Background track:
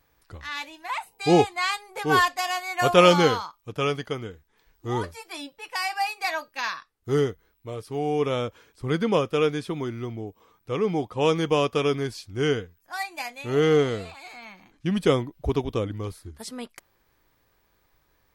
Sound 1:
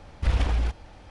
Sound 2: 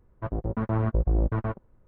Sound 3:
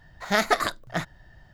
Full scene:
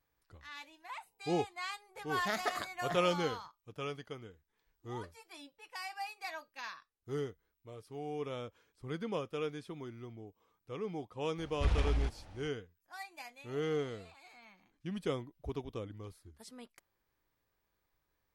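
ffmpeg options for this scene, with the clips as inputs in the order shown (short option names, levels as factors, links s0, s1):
-filter_complex "[0:a]volume=0.178[s0];[3:a]highpass=49,atrim=end=1.53,asetpts=PTS-STARTPTS,volume=0.211,afade=t=in:d=0.004:c=hsin,afade=t=out:st=1.526:d=0.004:c=hsin,adelay=1950[s1];[1:a]atrim=end=1.1,asetpts=PTS-STARTPTS,volume=0.422,afade=t=in:d=0.004:c=hsin,afade=t=out:st=1.096:d=0.004:c=hsin,adelay=501858S[s2];[s0][s1][s2]amix=inputs=3:normalize=0"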